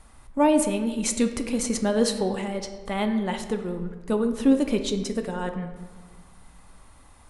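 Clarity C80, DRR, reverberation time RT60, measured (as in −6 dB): 10.5 dB, 6.0 dB, 1.5 s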